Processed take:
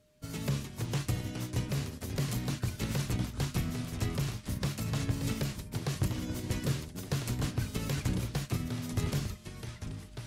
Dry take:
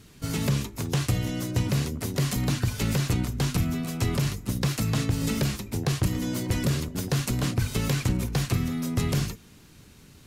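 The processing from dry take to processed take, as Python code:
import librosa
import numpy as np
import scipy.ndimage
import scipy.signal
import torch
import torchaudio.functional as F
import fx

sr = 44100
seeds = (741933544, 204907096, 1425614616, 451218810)

y = fx.echo_pitch(x, sr, ms=241, semitones=-3, count=2, db_per_echo=-6.0)
y = y + 10.0 ** (-50.0 / 20.0) * np.sin(2.0 * np.pi * 610.0 * np.arange(len(y)) / sr)
y = fx.upward_expand(y, sr, threshold_db=-43.0, expansion=1.5)
y = y * librosa.db_to_amplitude(-6.0)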